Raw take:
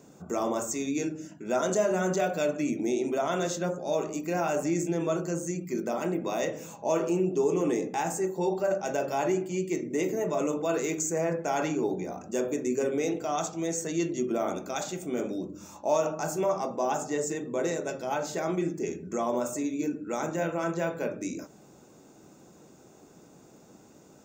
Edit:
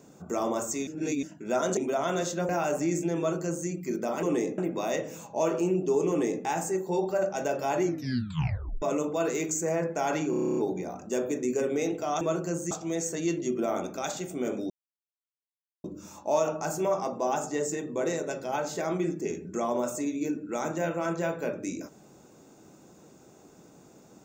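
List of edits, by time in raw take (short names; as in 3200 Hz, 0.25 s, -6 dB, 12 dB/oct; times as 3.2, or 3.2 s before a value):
0.87–1.23 reverse
1.77–3.01 cut
3.73–4.33 cut
5.02–5.52 copy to 13.43
7.58–7.93 copy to 6.07
9.31 tape stop 1.00 s
11.79 stutter 0.03 s, 10 plays
15.42 insert silence 1.14 s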